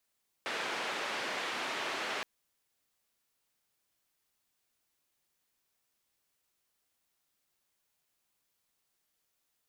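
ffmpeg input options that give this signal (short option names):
-f lavfi -i "anoisesrc=c=white:d=1.77:r=44100:seed=1,highpass=f=320,lowpass=f=2500,volume=-22.1dB"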